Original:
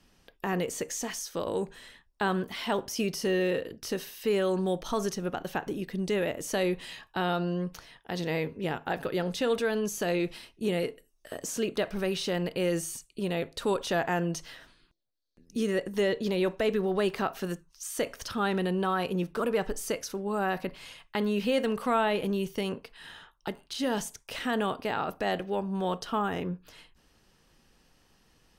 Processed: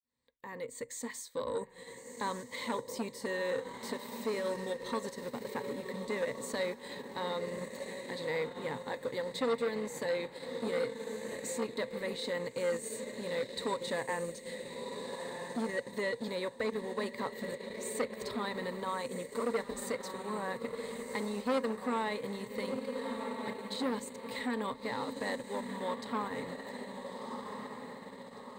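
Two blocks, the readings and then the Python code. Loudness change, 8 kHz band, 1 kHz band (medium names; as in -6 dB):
-6.5 dB, -6.5 dB, -6.0 dB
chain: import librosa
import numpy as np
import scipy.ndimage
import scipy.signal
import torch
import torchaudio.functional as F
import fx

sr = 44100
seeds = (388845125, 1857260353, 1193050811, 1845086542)

p1 = fx.fade_in_head(x, sr, length_s=1.19)
p2 = scipy.signal.sosfilt(scipy.signal.butter(2, 65.0, 'highpass', fs=sr, output='sos'), p1)
p3 = p2 + fx.echo_diffused(p2, sr, ms=1350, feedback_pct=49, wet_db=-6, dry=0)
p4 = fx.transient(p3, sr, attack_db=0, sustain_db=-8)
p5 = fx.ripple_eq(p4, sr, per_octave=1.0, db=15)
p6 = fx.transformer_sat(p5, sr, knee_hz=990.0)
y = p6 * 10.0 ** (-7.5 / 20.0)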